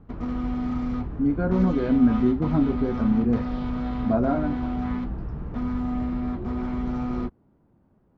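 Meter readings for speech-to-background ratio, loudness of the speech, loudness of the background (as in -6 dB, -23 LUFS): 5.5 dB, -24.0 LUFS, -29.5 LUFS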